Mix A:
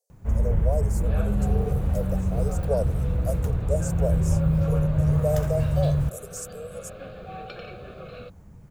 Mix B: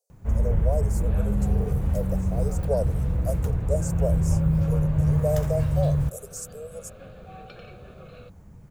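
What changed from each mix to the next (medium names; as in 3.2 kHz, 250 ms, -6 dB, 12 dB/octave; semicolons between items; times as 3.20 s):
second sound -6.0 dB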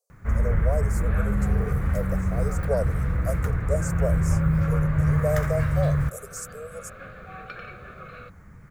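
master: add high-order bell 1.6 kHz +13 dB 1.2 oct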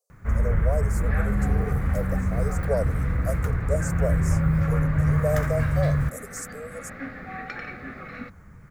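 second sound: remove static phaser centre 1.3 kHz, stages 8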